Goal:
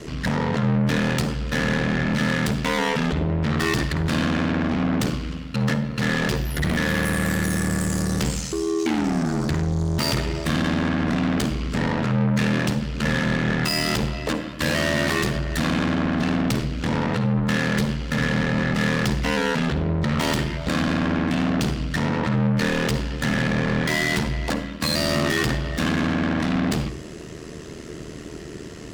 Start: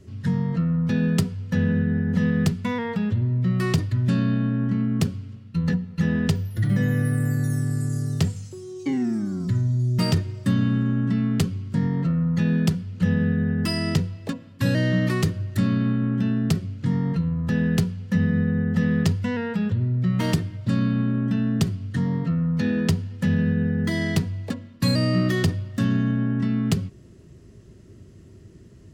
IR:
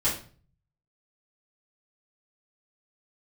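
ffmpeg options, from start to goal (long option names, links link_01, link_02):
-filter_complex "[0:a]asplit=2[link_01][link_02];[link_02]highpass=frequency=720:poles=1,volume=36dB,asoftclip=type=tanh:threshold=-8.5dB[link_03];[link_01][link_03]amix=inputs=2:normalize=0,lowpass=frequency=6000:poles=1,volume=-6dB,aeval=exprs='val(0)*sin(2*PI*39*n/s)':channel_layout=same,asplit=2[link_04][link_05];[1:a]atrim=start_sample=2205,adelay=48[link_06];[link_05][link_06]afir=irnorm=-1:irlink=0,volume=-23dB[link_07];[link_04][link_07]amix=inputs=2:normalize=0,volume=-4.5dB"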